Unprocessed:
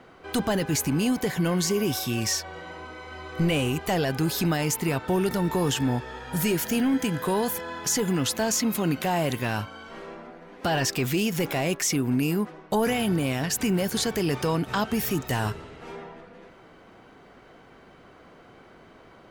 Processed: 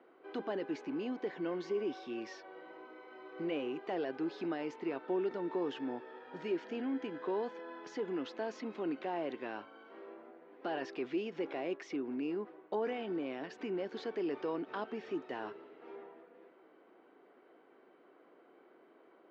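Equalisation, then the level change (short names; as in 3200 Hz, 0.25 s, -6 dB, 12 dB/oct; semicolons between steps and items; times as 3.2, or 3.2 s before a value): Gaussian blur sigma 2.5 samples; ladder high-pass 280 Hz, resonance 45%; -4.5 dB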